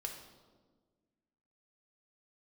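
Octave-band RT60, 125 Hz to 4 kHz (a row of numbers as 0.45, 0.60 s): 1.9, 2.0, 1.7, 1.3, 0.90, 0.95 s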